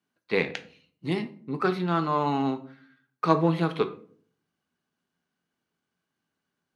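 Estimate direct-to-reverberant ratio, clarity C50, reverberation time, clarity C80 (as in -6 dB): 8.0 dB, 15.0 dB, 0.50 s, 19.0 dB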